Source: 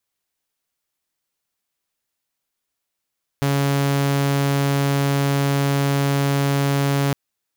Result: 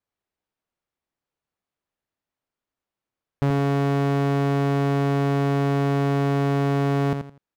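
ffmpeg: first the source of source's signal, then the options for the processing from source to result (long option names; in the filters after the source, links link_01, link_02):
-f lavfi -i "aevalsrc='0.188*(2*mod(140*t,1)-1)':duration=3.71:sample_rate=44100"
-filter_complex "[0:a]lowpass=frequency=1000:poles=1,asplit=2[link_01][link_02];[link_02]aecho=0:1:83|166|249:0.447|0.112|0.0279[link_03];[link_01][link_03]amix=inputs=2:normalize=0"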